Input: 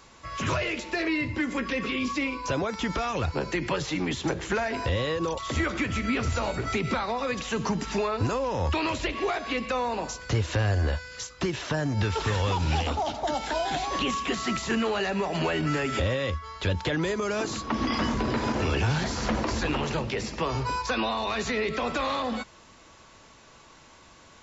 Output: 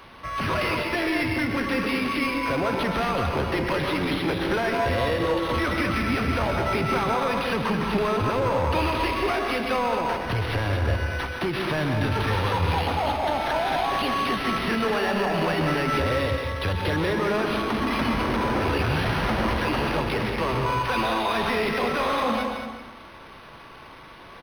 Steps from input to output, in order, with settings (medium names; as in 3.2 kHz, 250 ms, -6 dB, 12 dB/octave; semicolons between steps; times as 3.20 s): bass shelf 460 Hz -4.5 dB; saturation -30 dBFS, distortion -10 dB; delay 222 ms -7.5 dB; on a send at -3.5 dB: reverberation RT60 0.90 s, pre-delay 115 ms; on the sum: decimation joined by straight lines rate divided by 6×; trim +8.5 dB